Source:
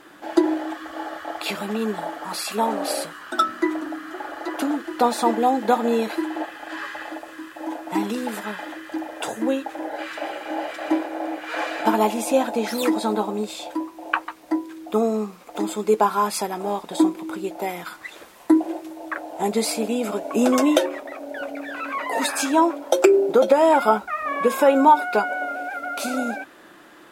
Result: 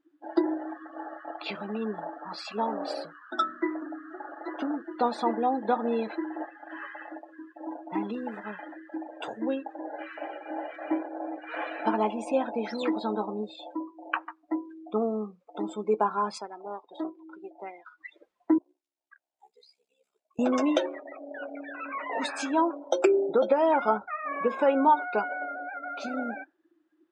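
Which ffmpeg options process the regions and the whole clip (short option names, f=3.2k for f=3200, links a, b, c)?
-filter_complex "[0:a]asettb=1/sr,asplit=3[a][b][c];[a]atrim=end=16.384[d];[b]atrim=start=16.38:end=17.98,asetpts=PTS-STARTPTS,afade=t=in:d=0.004:c=qsin,afade=t=out:st=1.596:d=0.004:c=qsin,lowshelf=f=420:g=-3.5,aeval=exprs='(tanh(7.08*val(0)+0.75)-tanh(0.75))/7.08':c=same,highpass=280,lowpass=7.1k[e];[c]atrim=start=17.976[f];[d][e]acrossfade=d=0.004:c1=hsin:c2=qsin[g];[g][f]acrossfade=d=0.004:c1=qsin:c2=hsin,asettb=1/sr,asplit=3[h][i][j];[h]atrim=end=18.584[k];[i]atrim=start=18.58:end=20.39,asetpts=PTS-STARTPTS,afade=t=in:d=0.004:c=qsin,afade=t=out:st=1.806:d=0.004:c=qsin,acrossover=split=4000[l][m];[m]acompressor=threshold=-36dB:ratio=4:attack=1:release=60[n];[l][n]amix=inputs=2:normalize=0,aeval=exprs='val(0)*sin(2*PI*33*n/s)':c=same,aderivative[o];[j]atrim=start=20.386[p];[k][o]acrossfade=d=0.004:c1=hsin:c2=qsin[q];[q][p]acrossfade=d=0.004:c1=qsin:c2=hsin,lowpass=6.4k,afftdn=nr=28:nf=-34,volume=-7dB"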